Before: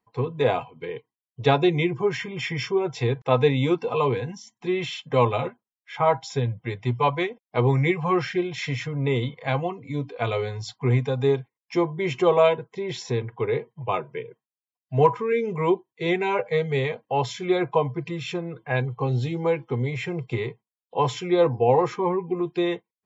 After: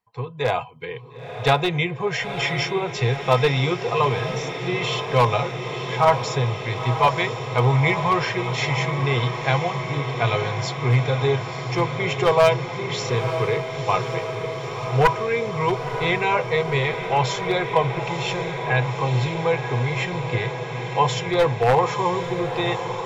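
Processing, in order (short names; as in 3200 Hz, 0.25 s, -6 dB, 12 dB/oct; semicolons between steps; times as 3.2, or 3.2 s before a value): one-sided fold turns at -12.5 dBFS; bell 290 Hz -13 dB 1.2 oct; AGC gain up to 6 dB; on a send: diffused feedback echo 0.957 s, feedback 78%, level -9 dB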